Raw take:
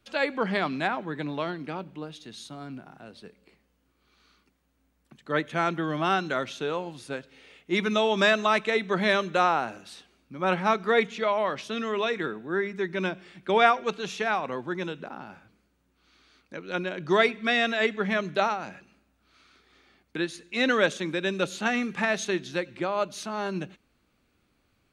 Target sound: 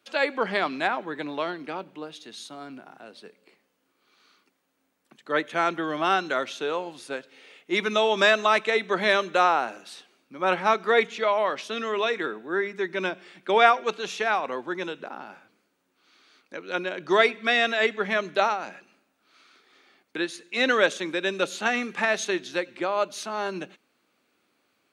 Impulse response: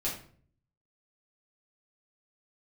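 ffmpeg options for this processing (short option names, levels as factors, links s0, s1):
-af "highpass=310,volume=1.33"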